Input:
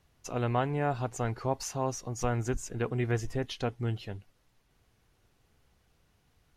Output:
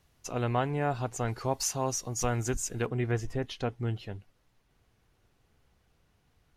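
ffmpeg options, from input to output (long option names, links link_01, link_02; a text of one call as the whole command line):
ffmpeg -i in.wav -af "asetnsamples=nb_out_samples=441:pad=0,asendcmd='1.28 highshelf g 10;2.86 highshelf g -3.5',highshelf=frequency=3700:gain=3.5" out.wav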